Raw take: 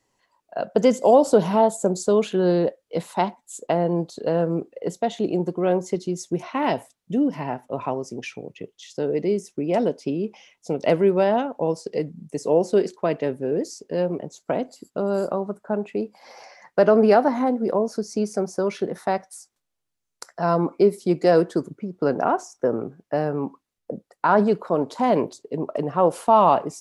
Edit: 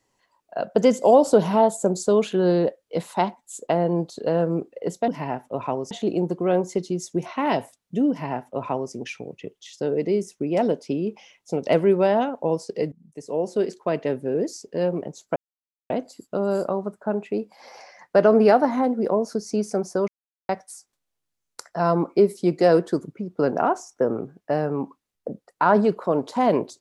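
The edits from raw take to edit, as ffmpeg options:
ffmpeg -i in.wav -filter_complex "[0:a]asplit=7[link_01][link_02][link_03][link_04][link_05][link_06][link_07];[link_01]atrim=end=5.082[link_08];[link_02]atrim=start=7.268:end=8.102[link_09];[link_03]atrim=start=5.078:end=12.09,asetpts=PTS-STARTPTS,afade=type=out:start_time=7.008:duration=0.004:curve=hsin:silence=0.158489[link_10];[link_04]atrim=start=12.09:end=14.53,asetpts=PTS-STARTPTS,afade=type=in:duration=1.19:silence=0.158489,afade=type=out:start_time=2.436:duration=0.004:curve=hsin,apad=pad_dur=0.54[link_11];[link_05]atrim=start=14.53:end=18.71,asetpts=PTS-STARTPTS,afade=type=in:duration=0.004:curve=hsin,afade=type=out:start_time=4.176:duration=0.004:curve=hsin[link_12];[link_06]atrim=start=18.71:end=19.12,asetpts=PTS-STARTPTS,volume=0[link_13];[link_07]atrim=start=19.12,asetpts=PTS-STARTPTS,afade=type=in:duration=0.004:curve=hsin[link_14];[link_08][link_09]acrossfade=duration=0.004:curve1=hsin:curve2=hsin[link_15];[link_10][link_11][link_12][link_13][link_14]concat=n=5:v=0:a=1[link_16];[link_15][link_16]acrossfade=duration=0.004:curve1=hsin:curve2=hsin" out.wav

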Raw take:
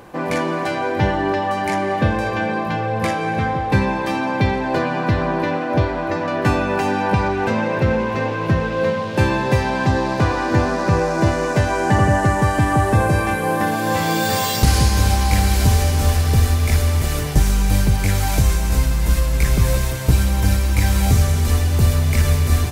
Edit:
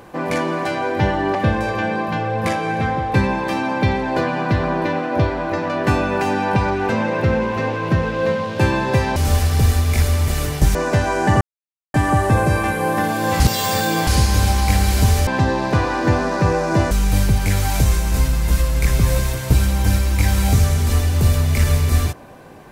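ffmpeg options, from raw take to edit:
ffmpeg -i in.wav -filter_complex "[0:a]asplit=10[link_01][link_02][link_03][link_04][link_05][link_06][link_07][link_08][link_09][link_10];[link_01]atrim=end=1.352[link_11];[link_02]atrim=start=1.928:end=9.742[link_12];[link_03]atrim=start=15.898:end=17.492[link_13];[link_04]atrim=start=11.378:end=12.04,asetpts=PTS-STARTPTS,afade=type=out:start_time=0.658:duration=0.004:curve=hsin[link_14];[link_05]atrim=start=12.04:end=12.57,asetpts=PTS-STARTPTS,volume=0[link_15];[link_06]atrim=start=12.57:end=14.032,asetpts=PTS-STARTPTS,afade=type=in:duration=0.004:curve=hsin[link_16];[link_07]atrim=start=14.028:end=14.702,asetpts=PTS-STARTPTS,areverse[link_17];[link_08]atrim=start=14.698:end=15.902[link_18];[link_09]atrim=start=9.738:end=11.382[link_19];[link_10]atrim=start=17.488[link_20];[link_11][link_12]acrossfade=duration=0.004:curve1=hsin:curve2=hsin[link_21];[link_21][link_13]acrossfade=duration=0.004:curve1=hsin:curve2=hsin[link_22];[link_14][link_15][link_16]concat=n=3:v=0:a=1[link_23];[link_22][link_23]acrossfade=duration=0.004:curve1=hsin:curve2=hsin[link_24];[link_24][link_17]acrossfade=duration=0.004:curve1=hsin:curve2=hsin[link_25];[link_25][link_18]acrossfade=duration=0.004:curve1=hsin:curve2=hsin[link_26];[link_26][link_19]acrossfade=duration=0.004:curve1=hsin:curve2=hsin[link_27];[link_27][link_20]acrossfade=duration=0.004:curve1=hsin:curve2=hsin" out.wav

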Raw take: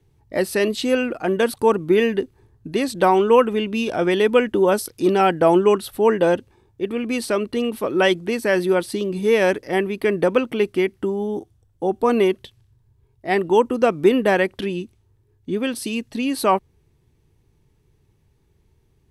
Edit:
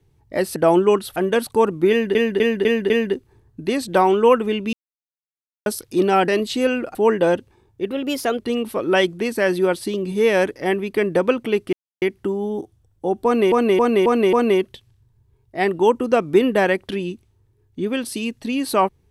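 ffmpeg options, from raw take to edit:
ffmpeg -i in.wav -filter_complex "[0:a]asplit=18[link_01][link_02][link_03][link_04][link_05][link_06][link_07][link_08][link_09][link_10][link_11][link_12][link_13][link_14][link_15][link_16][link_17][link_18];[link_01]atrim=end=0.562[link_19];[link_02]atrim=start=5.348:end=5.952[link_20];[link_03]atrim=start=1.228:end=2.222[link_21];[link_04]atrim=start=1.968:end=2.222[link_22];[link_05]atrim=start=1.968:end=2.222[link_23];[link_06]atrim=start=1.968:end=2.222[link_24];[link_07]atrim=start=1.968:end=3.8,asetpts=PTS-STARTPTS,afade=type=out:start_time=1.828:duration=0.004:curve=hsin[link_25];[link_08]atrim=start=3.8:end=4.73,asetpts=PTS-STARTPTS,volume=0[link_26];[link_09]atrim=start=4.73:end=5.352,asetpts=PTS-STARTPTS,afade=type=in:duration=0.004:curve=hsin[link_27];[link_10]atrim=start=0.558:end=1.232[link_28];[link_11]atrim=start=5.948:end=6.914[link_29];[link_12]atrim=start=6.91:end=7.46,asetpts=PTS-STARTPTS,asetrate=50715,aresample=44100,atrim=end_sample=21091,asetpts=PTS-STARTPTS[link_30];[link_13]atrim=start=7.456:end=10.8,asetpts=PTS-STARTPTS,afade=type=out:start_time=3.34:duration=0.004:curve=hsin,apad=pad_dur=0.29[link_31];[link_14]atrim=start=10.8:end=12.302,asetpts=PTS-STARTPTS,afade=type=in:duration=0.004:curve=hsin[link_32];[link_15]atrim=start=12.028:end=12.302[link_33];[link_16]atrim=start=12.028:end=12.302[link_34];[link_17]atrim=start=12.028:end=12.302[link_35];[link_18]atrim=start=12.028[link_36];[link_19][link_20]acrossfade=duration=0.004:curve1=hsin:curve2=hsin[link_37];[link_37][link_21]acrossfade=duration=0.004:curve1=hsin:curve2=hsin[link_38];[link_38][link_22]acrossfade=duration=0.004:curve1=hsin:curve2=hsin[link_39];[link_39][link_23]acrossfade=duration=0.004:curve1=hsin:curve2=hsin[link_40];[link_40][link_24]acrossfade=duration=0.004:curve1=hsin:curve2=hsin[link_41];[link_25][link_26][link_27]concat=n=3:v=0:a=1[link_42];[link_41][link_42]acrossfade=duration=0.004:curve1=hsin:curve2=hsin[link_43];[link_43][link_28]acrossfade=duration=0.004:curve1=hsin:curve2=hsin[link_44];[link_44][link_29]acrossfade=duration=0.004:curve1=hsin:curve2=hsin[link_45];[link_45][link_30]acrossfade=duration=0.004:curve1=hsin:curve2=hsin[link_46];[link_31][link_32]concat=n=2:v=0:a=1[link_47];[link_46][link_47]acrossfade=duration=0.004:curve1=hsin:curve2=hsin[link_48];[link_48][link_33]acrossfade=duration=0.004:curve1=hsin:curve2=hsin[link_49];[link_49][link_34]acrossfade=duration=0.004:curve1=hsin:curve2=hsin[link_50];[link_50][link_35]acrossfade=duration=0.004:curve1=hsin:curve2=hsin[link_51];[link_51][link_36]acrossfade=duration=0.004:curve1=hsin:curve2=hsin" out.wav

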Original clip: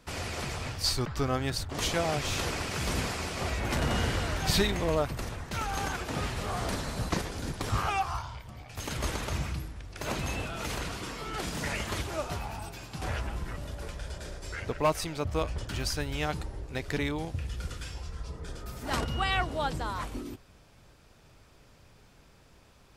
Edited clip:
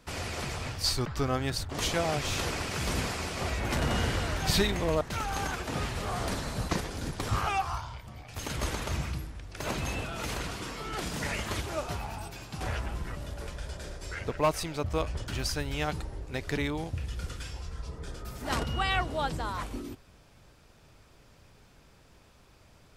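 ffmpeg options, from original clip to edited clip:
ffmpeg -i in.wav -filter_complex "[0:a]asplit=2[link_01][link_02];[link_01]atrim=end=5.012[link_03];[link_02]atrim=start=5.418[link_04];[link_03][link_04]acrossfade=duration=0.004:curve1=hsin:curve2=hsin" out.wav

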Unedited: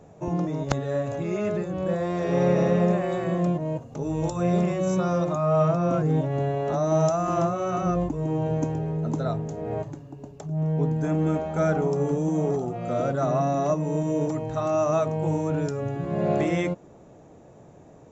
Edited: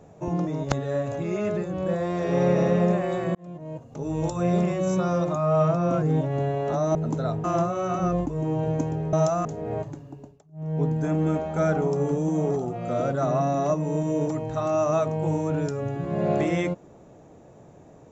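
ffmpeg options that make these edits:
ffmpeg -i in.wav -filter_complex "[0:a]asplit=8[link_01][link_02][link_03][link_04][link_05][link_06][link_07][link_08];[link_01]atrim=end=3.35,asetpts=PTS-STARTPTS,afade=type=out:start_time=3.346:duration=0.004:curve=hsin[link_09];[link_02]atrim=start=3.35:end=6.952,asetpts=PTS-STARTPTS,afade=type=in:duration=0.83[link_10];[link_03]atrim=start=8.958:end=9.452[link_11];[link_04]atrim=start=7.268:end=8.962[link_12];[link_05]atrim=start=6.948:end=7.272[link_13];[link_06]atrim=start=9.448:end=10.43,asetpts=PTS-STARTPTS,afade=type=out:start_time=0.682:duration=0.3:silence=0.0668344[link_14];[link_07]atrim=start=10.43:end=10.52,asetpts=PTS-STARTPTS,volume=-23.5dB[link_15];[link_08]atrim=start=10.52,asetpts=PTS-STARTPTS,afade=type=in:duration=0.3:silence=0.0668344[link_16];[link_09][link_10]concat=n=2:v=0:a=1[link_17];[link_17][link_11]acrossfade=duration=0.004:curve1=hsin:curve2=hsin[link_18];[link_18][link_12]acrossfade=duration=0.004:curve1=hsin:curve2=hsin[link_19];[link_19][link_13]acrossfade=duration=0.004:curve1=hsin:curve2=hsin[link_20];[link_14][link_15][link_16]concat=n=3:v=0:a=1[link_21];[link_20][link_21]acrossfade=duration=0.004:curve1=hsin:curve2=hsin" out.wav

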